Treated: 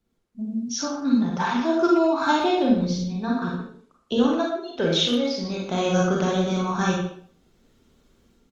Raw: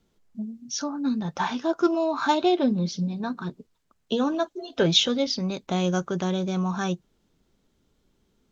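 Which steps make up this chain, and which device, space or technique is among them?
speakerphone in a meeting room (reverb RT60 0.50 s, pre-delay 31 ms, DRR -2 dB; speakerphone echo 0.12 s, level -9 dB; AGC gain up to 12 dB; gain -7.5 dB; Opus 32 kbps 48000 Hz)

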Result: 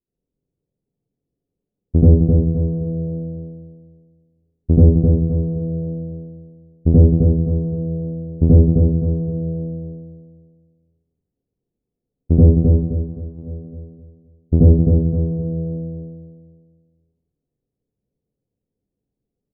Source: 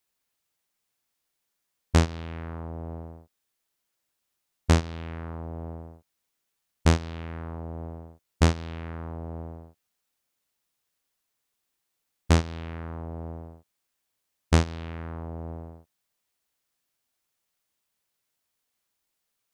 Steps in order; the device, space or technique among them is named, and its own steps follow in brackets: 12.54–13.37 HPF 560 Hz -> 1300 Hz 24 dB/oct; next room (LPF 410 Hz 24 dB/oct; reverb RT60 0.45 s, pre-delay 73 ms, DRR -9.5 dB); feedback echo 0.261 s, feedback 38%, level -4 dB; gain +5 dB

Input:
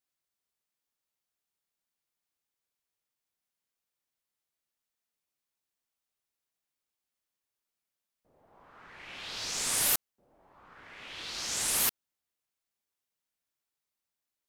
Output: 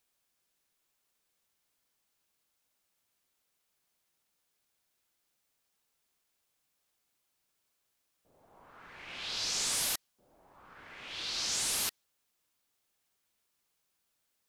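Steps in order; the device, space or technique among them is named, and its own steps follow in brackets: compact cassette (soft clip -29.5 dBFS, distortion -9 dB; LPF 12000 Hz 12 dB/oct; wow and flutter; white noise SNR 34 dB); notch 1900 Hz, Q 29; dynamic EQ 4500 Hz, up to +5 dB, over -50 dBFS, Q 1

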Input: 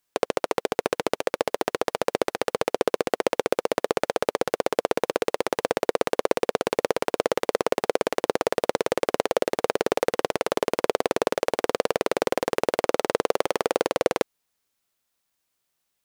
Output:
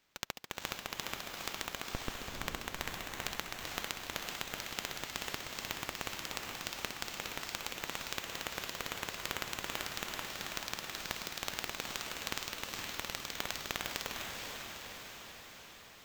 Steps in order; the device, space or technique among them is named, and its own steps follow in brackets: inverse Chebyshev high-pass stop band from 2700 Hz, stop band 50 dB; early companding sampler (sample-rate reducer 10000 Hz, jitter 0%; companded quantiser 8-bit); 1.92–2.35 tilt -3.5 dB/oct; diffused feedback echo 0.461 s, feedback 65%, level -3 dB; gain +3.5 dB

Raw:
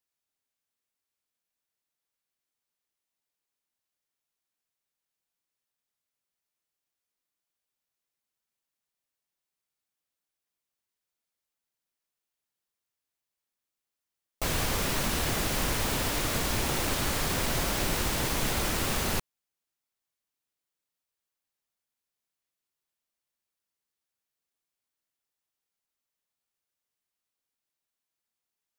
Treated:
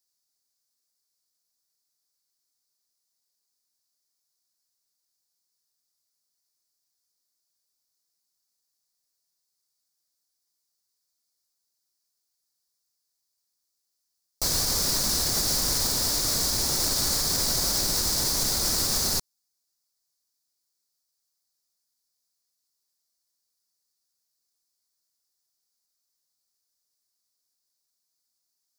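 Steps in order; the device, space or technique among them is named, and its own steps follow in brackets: over-bright horn tweeter (resonant high shelf 3700 Hz +9 dB, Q 3; limiter -14 dBFS, peak gain reduction 4.5 dB); gain -1 dB

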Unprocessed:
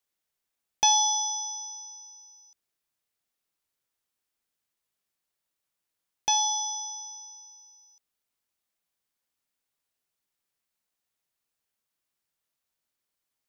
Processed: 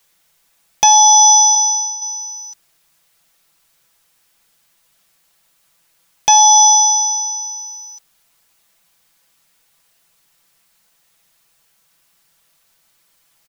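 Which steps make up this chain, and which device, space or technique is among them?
1.55–2.02 expander -40 dBFS; bell 350 Hz -5.5 dB 0.93 oct; comb 6 ms, depth 60%; loud club master (compressor 2:1, threshold -28 dBFS, peak gain reduction 7 dB; hard clip -16 dBFS, distortion -32 dB; maximiser +24 dB); gain -1 dB

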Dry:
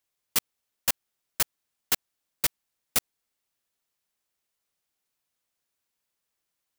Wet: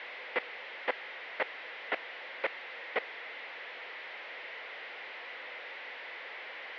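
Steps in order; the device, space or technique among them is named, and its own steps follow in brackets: digital answering machine (BPF 320–3400 Hz; delta modulation 32 kbps, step -46 dBFS; speaker cabinet 490–3200 Hz, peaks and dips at 500 Hz +7 dB, 1200 Hz -4 dB, 2000 Hz +9 dB); gain +7 dB

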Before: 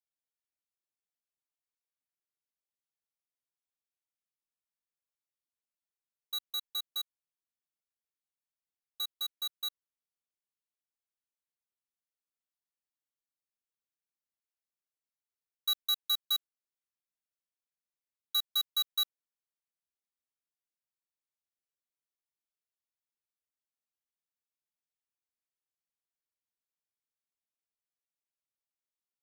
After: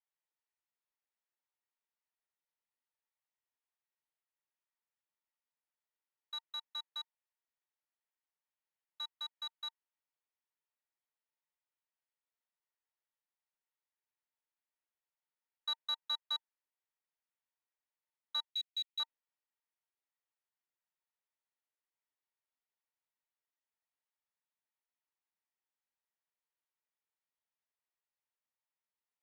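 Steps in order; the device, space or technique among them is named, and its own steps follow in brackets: tin-can telephone (BPF 470–2800 Hz; small resonant body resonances 910/1900 Hz, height 8 dB); 18.5–19 elliptic band-stop 250–2300 Hz, stop band 40 dB; gain +1 dB

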